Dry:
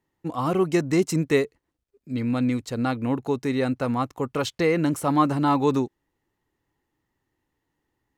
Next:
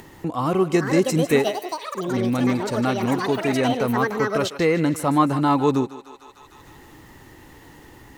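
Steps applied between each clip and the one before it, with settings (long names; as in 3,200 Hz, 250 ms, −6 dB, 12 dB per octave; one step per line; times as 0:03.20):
feedback echo with a high-pass in the loop 152 ms, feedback 47%, high-pass 580 Hz, level −12.5 dB
delay with pitch and tempo change per echo 568 ms, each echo +7 semitones, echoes 3, each echo −6 dB
upward compression, threshold −24 dBFS
level +2 dB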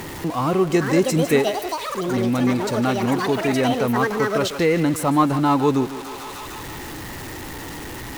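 converter with a step at zero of −29 dBFS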